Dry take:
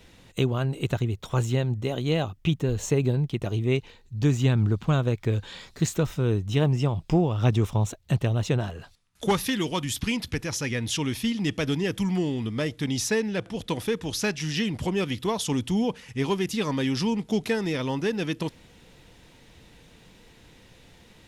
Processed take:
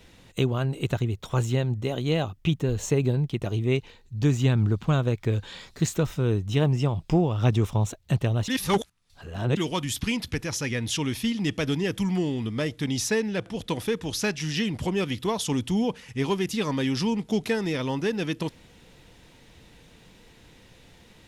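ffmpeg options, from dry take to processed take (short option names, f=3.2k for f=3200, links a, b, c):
-filter_complex "[0:a]asplit=3[a][b][c];[a]atrim=end=8.482[d];[b]atrim=start=8.478:end=9.572,asetpts=PTS-STARTPTS,areverse[e];[c]atrim=start=9.568[f];[d][e]acrossfade=d=0.004:c1=hsin:c2=hsin[g];[g][f]acrossfade=d=0.004:c1=hsin:c2=hsin"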